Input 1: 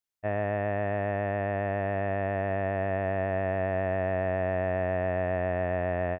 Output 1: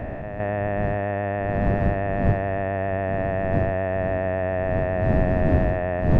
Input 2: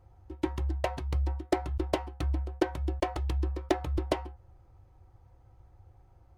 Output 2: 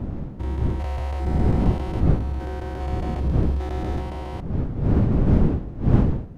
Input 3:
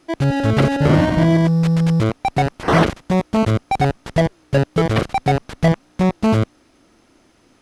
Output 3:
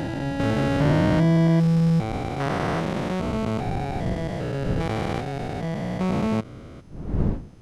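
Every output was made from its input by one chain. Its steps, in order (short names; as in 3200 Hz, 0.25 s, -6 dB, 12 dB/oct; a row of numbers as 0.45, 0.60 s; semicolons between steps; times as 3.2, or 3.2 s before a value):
stepped spectrum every 0.4 s; wind noise 170 Hz -30 dBFS; match loudness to -24 LUFS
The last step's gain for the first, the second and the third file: +4.0, +7.5, -3.0 dB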